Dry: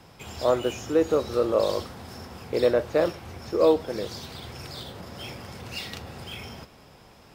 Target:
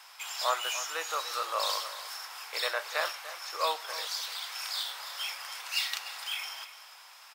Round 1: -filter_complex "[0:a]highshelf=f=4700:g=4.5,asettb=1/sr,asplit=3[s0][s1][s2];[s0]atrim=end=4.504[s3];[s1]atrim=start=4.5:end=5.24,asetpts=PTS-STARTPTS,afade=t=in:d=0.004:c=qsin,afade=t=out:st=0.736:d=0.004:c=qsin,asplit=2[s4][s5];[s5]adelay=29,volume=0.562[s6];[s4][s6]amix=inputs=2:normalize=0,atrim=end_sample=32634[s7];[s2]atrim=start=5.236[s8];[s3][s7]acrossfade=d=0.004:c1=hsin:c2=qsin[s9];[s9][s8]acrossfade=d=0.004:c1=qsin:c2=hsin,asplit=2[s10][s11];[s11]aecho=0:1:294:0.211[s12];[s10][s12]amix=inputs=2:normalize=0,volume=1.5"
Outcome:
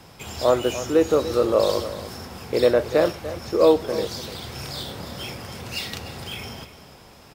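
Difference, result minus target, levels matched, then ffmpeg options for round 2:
1 kHz band -7.0 dB
-filter_complex "[0:a]highpass=f=960:w=0.5412,highpass=f=960:w=1.3066,highshelf=f=4700:g=4.5,asettb=1/sr,asplit=3[s0][s1][s2];[s0]atrim=end=4.504[s3];[s1]atrim=start=4.5:end=5.24,asetpts=PTS-STARTPTS,afade=t=in:d=0.004:c=qsin,afade=t=out:st=0.736:d=0.004:c=qsin,asplit=2[s4][s5];[s5]adelay=29,volume=0.562[s6];[s4][s6]amix=inputs=2:normalize=0,atrim=end_sample=32634[s7];[s2]atrim=start=5.236[s8];[s3][s7]acrossfade=d=0.004:c1=hsin:c2=qsin[s9];[s9][s8]acrossfade=d=0.004:c1=qsin:c2=hsin,asplit=2[s10][s11];[s11]aecho=0:1:294:0.211[s12];[s10][s12]amix=inputs=2:normalize=0,volume=1.5"

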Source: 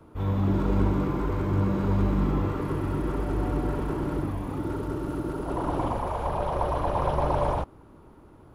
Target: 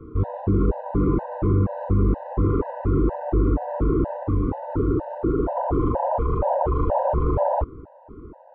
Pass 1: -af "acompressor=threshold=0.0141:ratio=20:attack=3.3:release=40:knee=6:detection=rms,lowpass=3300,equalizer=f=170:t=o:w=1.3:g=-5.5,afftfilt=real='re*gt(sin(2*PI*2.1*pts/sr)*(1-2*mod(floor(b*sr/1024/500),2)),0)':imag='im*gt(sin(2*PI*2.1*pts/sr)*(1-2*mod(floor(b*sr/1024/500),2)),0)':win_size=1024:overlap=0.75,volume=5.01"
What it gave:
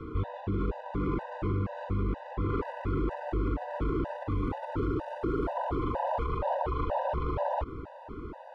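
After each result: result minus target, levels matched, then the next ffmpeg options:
compression: peak gain reduction +11 dB; 1 kHz band +2.5 dB
-af "acompressor=threshold=0.0531:ratio=20:attack=3.3:release=40:knee=6:detection=rms,lowpass=3300,equalizer=f=170:t=o:w=1.3:g=-5.5,afftfilt=real='re*gt(sin(2*PI*2.1*pts/sr)*(1-2*mod(floor(b*sr/1024/500),2)),0)':imag='im*gt(sin(2*PI*2.1*pts/sr)*(1-2*mod(floor(b*sr/1024/500),2)),0)':win_size=1024:overlap=0.75,volume=5.01"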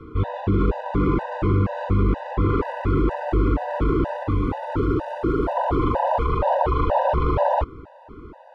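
1 kHz band +2.5 dB
-af "acompressor=threshold=0.0531:ratio=20:attack=3.3:release=40:knee=6:detection=rms,lowpass=870,equalizer=f=170:t=o:w=1.3:g=-5.5,afftfilt=real='re*gt(sin(2*PI*2.1*pts/sr)*(1-2*mod(floor(b*sr/1024/500),2)),0)':imag='im*gt(sin(2*PI*2.1*pts/sr)*(1-2*mod(floor(b*sr/1024/500),2)),0)':win_size=1024:overlap=0.75,volume=5.01"

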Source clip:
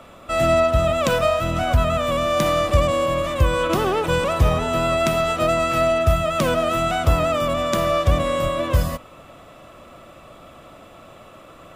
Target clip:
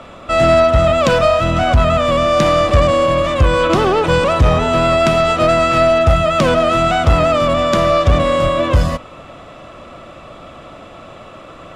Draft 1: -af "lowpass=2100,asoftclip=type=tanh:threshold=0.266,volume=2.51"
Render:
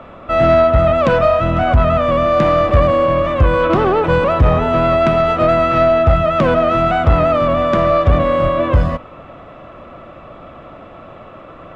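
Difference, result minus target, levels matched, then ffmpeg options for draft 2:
8 kHz band -16.5 dB
-af "lowpass=6200,asoftclip=type=tanh:threshold=0.266,volume=2.51"

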